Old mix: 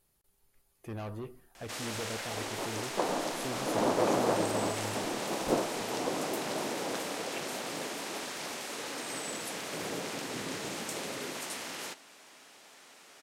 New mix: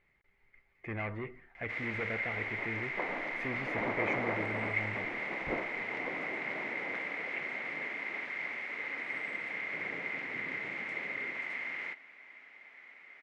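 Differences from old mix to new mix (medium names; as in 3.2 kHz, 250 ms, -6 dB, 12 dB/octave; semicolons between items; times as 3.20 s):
background -8.5 dB; master: add resonant low-pass 2.1 kHz, resonance Q 16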